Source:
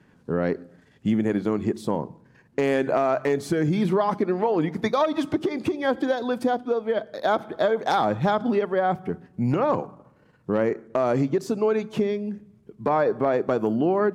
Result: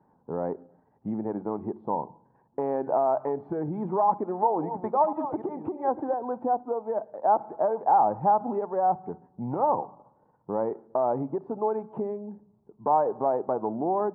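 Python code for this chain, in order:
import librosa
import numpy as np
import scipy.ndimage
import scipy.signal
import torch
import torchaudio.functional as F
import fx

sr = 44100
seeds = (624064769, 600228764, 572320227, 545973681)

y = fx.reverse_delay(x, sr, ms=539, wet_db=-11.0, at=(4.05, 6.14))
y = fx.ladder_lowpass(y, sr, hz=950.0, resonance_pct=70)
y = fx.low_shelf(y, sr, hz=180.0, db=-5.0)
y = y * librosa.db_to_amplitude(4.0)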